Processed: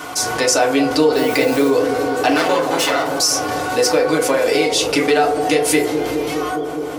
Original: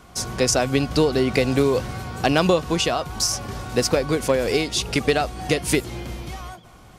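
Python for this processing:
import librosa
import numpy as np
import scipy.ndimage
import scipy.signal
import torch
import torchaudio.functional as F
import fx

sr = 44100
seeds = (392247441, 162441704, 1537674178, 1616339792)

p1 = fx.lower_of_two(x, sr, delay_ms=7.3, at=(2.3, 3.18))
p2 = fx.highpass(p1, sr, hz=180.0, slope=6)
p3 = fx.bass_treble(p2, sr, bass_db=-10, treble_db=-6)
p4 = p3 + fx.echo_bbd(p3, sr, ms=206, stages=1024, feedback_pct=78, wet_db=-11.5, dry=0)
p5 = fx.quant_dither(p4, sr, seeds[0], bits=8, dither='triangular', at=(1.15, 1.68), fade=0.02)
p6 = fx.high_shelf(p5, sr, hz=4900.0, db=9.0)
p7 = fx.rev_fdn(p6, sr, rt60_s=0.4, lf_ratio=0.7, hf_ratio=0.45, size_ms=20.0, drr_db=-3.0)
p8 = fx.env_flatten(p7, sr, amount_pct=50)
y = p8 * librosa.db_to_amplitude(-2.5)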